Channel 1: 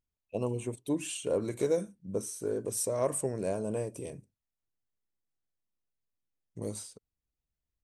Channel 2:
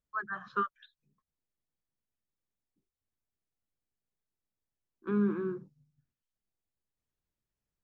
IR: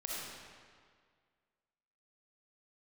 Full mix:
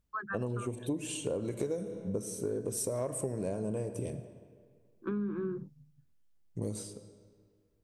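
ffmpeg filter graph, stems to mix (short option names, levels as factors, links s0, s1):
-filter_complex "[0:a]volume=0.794,asplit=3[s0][s1][s2];[s1]volume=0.266[s3];[1:a]acompressor=threshold=0.0126:ratio=3,volume=1.33[s4];[s2]apad=whole_len=345381[s5];[s4][s5]sidechaincompress=threshold=0.0178:ratio=8:attack=16:release=390[s6];[2:a]atrim=start_sample=2205[s7];[s3][s7]afir=irnorm=-1:irlink=0[s8];[s0][s6][s8]amix=inputs=3:normalize=0,lowshelf=f=390:g=7.5,acompressor=threshold=0.0316:ratio=10"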